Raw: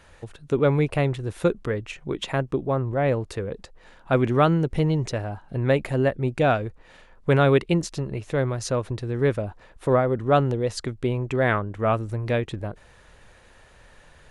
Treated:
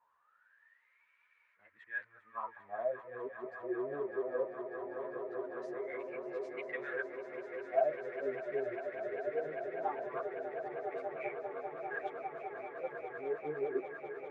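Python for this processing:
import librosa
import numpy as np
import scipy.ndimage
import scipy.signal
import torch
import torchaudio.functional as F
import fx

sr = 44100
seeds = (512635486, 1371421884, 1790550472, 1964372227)

p1 = x[::-1].copy()
p2 = fx.wah_lfo(p1, sr, hz=0.2, low_hz=370.0, high_hz=2300.0, q=20.0)
p3 = p2 + fx.echo_swell(p2, sr, ms=199, loudest=8, wet_db=-12.0, dry=0)
p4 = fx.ensemble(p3, sr)
y = p4 * 10.0 ** (2.0 / 20.0)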